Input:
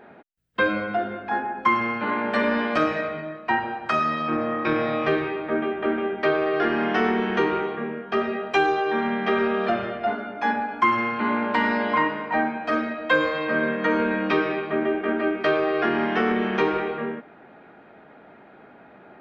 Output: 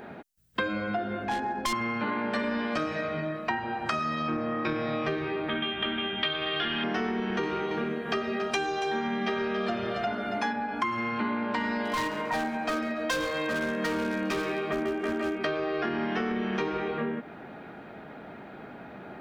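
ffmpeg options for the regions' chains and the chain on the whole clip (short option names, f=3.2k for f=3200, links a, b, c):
-filter_complex "[0:a]asettb=1/sr,asplit=3[a][b][c];[a]atrim=end=1.244[d];[b]atrim=start=1.24:end=1.73,asetpts=PTS-STARTPTS,afade=t=in:d=0.004:c=qsin,afade=t=out:st=0.486:d=0.004:c=qsin,asoftclip=type=hard:threshold=-21.5dB,equalizer=f=1.3k:w=4:g=-6,adynamicsmooth=sensitivity=5.5:basefreq=4.4k[e];[c]atrim=start=1.726[f];[d][e]acrossfade=d=0.004:c1=hsin:c2=qsin[g];[g][f]acrossfade=d=0.004:c1=qsin:c2=hsin,asettb=1/sr,asplit=3[h][i][j];[h]atrim=end=5.494[k];[i]atrim=start=5.49:end=6.84,asetpts=PTS-STARTPTS,afade=t=in:d=0.004:c=qsin,afade=t=out:st=1.346:d=0.004:c=qsin,lowpass=f=3.3k:t=q:w=9.6,equalizer=f=440:w=0.91:g=-9.5[l];[j]atrim=start=6.836[m];[k][l]acrossfade=d=0.004:c1=hsin:c2=qsin[n];[n][m]acrossfade=d=0.004:c1=qsin:c2=hsin,asettb=1/sr,asplit=3[o][p][q];[o]atrim=end=7.434[r];[p]atrim=start=7.43:end=10.53,asetpts=PTS-STARTPTS,afade=t=in:d=0.004:c=qsin,afade=t=out:st=3.096:d=0.004:c=qsin,highshelf=f=3.9k:g=8,aecho=1:1:279:0.355,atrim=end_sample=136710[s];[q]atrim=start=10.526[t];[r][s]acrossfade=d=0.004:c1=hsin:c2=qsin[u];[u][t]acrossfade=d=0.004:c1=qsin:c2=hsin,asettb=1/sr,asplit=3[v][w][x];[v]atrim=end=11.854[y];[w]atrim=start=11.85:end=15.38,asetpts=PTS-STARTPTS,afade=t=in:d=0.004:c=qsin,afade=t=out:st=3.526:d=0.004:c=qsin,bass=f=250:g=-4,treble=f=4k:g=-1,asoftclip=type=hard:threshold=-19.5dB,aecho=1:1:138|276|414:0.158|0.0444|0.0124,atrim=end_sample=155673[z];[x]atrim=start=15.376[aa];[y][z]acrossfade=d=0.004:c1=hsin:c2=qsin[ab];[ab][aa]acrossfade=d=0.004:c1=qsin:c2=hsin,bass=f=250:g=6,treble=f=4k:g=10,acompressor=threshold=-31dB:ratio=6,volume=3.5dB"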